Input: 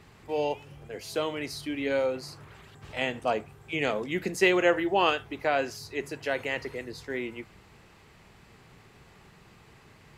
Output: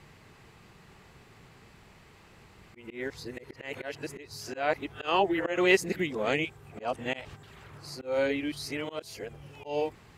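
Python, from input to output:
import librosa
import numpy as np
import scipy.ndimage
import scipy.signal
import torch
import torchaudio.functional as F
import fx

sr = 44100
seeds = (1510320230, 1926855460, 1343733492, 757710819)

y = np.flip(x).copy()
y = fx.auto_swell(y, sr, attack_ms=164.0)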